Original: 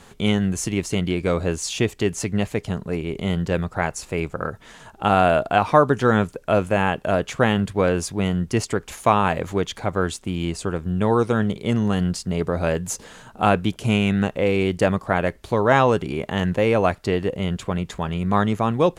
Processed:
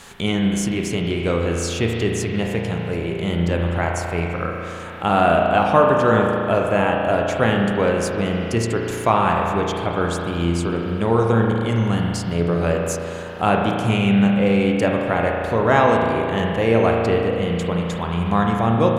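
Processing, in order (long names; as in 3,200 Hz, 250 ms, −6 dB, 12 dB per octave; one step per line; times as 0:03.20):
spring reverb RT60 2.6 s, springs 35 ms, chirp 40 ms, DRR 0 dB
one half of a high-frequency compander encoder only
level −1 dB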